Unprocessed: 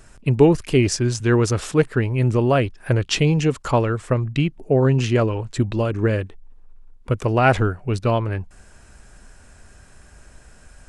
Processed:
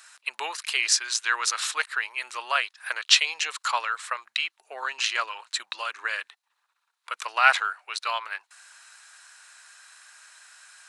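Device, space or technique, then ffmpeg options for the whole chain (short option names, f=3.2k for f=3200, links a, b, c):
headphones lying on a table: -af "highpass=f=1.1k:w=0.5412,highpass=f=1.1k:w=1.3066,equalizer=f=4k:t=o:w=0.26:g=8,volume=3.5dB"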